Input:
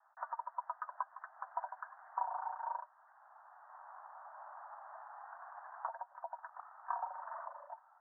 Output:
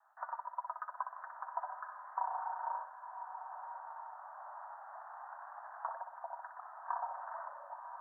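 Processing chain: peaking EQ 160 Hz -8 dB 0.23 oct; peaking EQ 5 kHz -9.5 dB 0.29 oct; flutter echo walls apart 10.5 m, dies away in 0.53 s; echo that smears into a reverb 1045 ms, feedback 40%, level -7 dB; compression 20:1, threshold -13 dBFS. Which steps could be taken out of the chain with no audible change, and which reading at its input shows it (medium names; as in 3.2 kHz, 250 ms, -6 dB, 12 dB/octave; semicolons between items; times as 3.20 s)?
peaking EQ 160 Hz: input has nothing below 540 Hz; peaking EQ 5 kHz: input has nothing above 1.8 kHz; compression, threshold -13 dBFS: peak at its input -22.0 dBFS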